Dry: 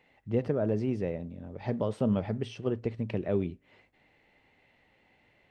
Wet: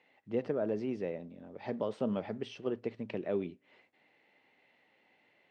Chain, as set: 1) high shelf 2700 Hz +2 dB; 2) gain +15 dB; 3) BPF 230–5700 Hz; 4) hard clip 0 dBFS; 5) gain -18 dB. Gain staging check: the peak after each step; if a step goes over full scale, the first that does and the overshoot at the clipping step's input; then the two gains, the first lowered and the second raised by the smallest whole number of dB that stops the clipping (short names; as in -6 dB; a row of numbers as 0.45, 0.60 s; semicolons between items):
-16.0, -1.0, -3.0, -3.0, -21.0 dBFS; no overload